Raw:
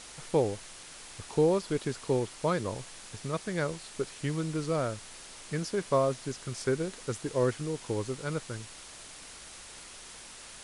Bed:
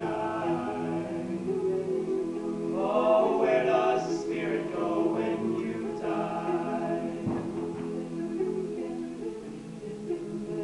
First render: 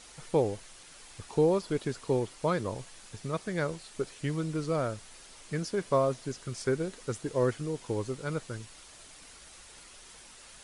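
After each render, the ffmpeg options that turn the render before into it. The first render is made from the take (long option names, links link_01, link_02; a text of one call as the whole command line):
ffmpeg -i in.wav -af "afftdn=noise_reduction=6:noise_floor=-48" out.wav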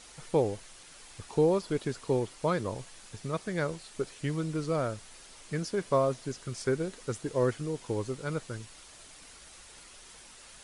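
ffmpeg -i in.wav -af anull out.wav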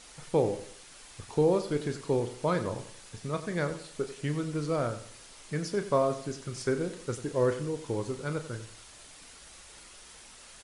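ffmpeg -i in.wav -filter_complex "[0:a]asplit=2[link_01][link_02];[link_02]adelay=34,volume=-10.5dB[link_03];[link_01][link_03]amix=inputs=2:normalize=0,aecho=1:1:92|184|276|368:0.224|0.0806|0.029|0.0104" out.wav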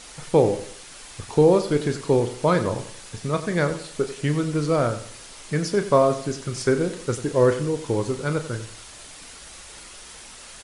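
ffmpeg -i in.wav -af "volume=8.5dB" out.wav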